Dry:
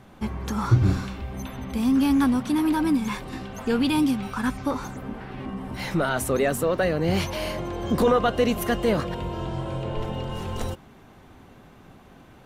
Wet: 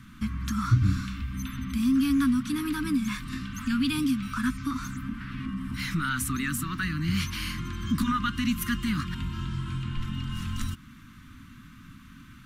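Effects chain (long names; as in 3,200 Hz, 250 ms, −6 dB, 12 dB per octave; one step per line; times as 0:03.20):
elliptic band-stop filter 270–1,200 Hz, stop band 50 dB
in parallel at +1.5 dB: downward compressor, threshold −35 dBFS, peak gain reduction 20 dB
on the sum: level −3.5 dB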